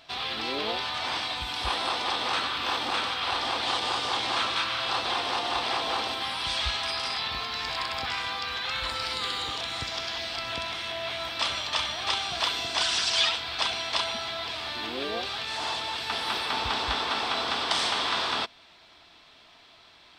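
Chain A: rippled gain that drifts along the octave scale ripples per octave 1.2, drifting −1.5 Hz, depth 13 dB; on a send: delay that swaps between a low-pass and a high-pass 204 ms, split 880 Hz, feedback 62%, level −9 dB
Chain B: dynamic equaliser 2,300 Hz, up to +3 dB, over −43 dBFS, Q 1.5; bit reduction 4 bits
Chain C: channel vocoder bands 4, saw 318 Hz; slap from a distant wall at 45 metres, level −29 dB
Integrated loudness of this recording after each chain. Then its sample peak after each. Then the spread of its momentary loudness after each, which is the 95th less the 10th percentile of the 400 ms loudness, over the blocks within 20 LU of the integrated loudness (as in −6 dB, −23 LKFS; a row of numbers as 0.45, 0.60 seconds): −25.5, −27.0, −30.0 LKFS; −9.0, −11.0, −13.5 dBFS; 6, 13, 6 LU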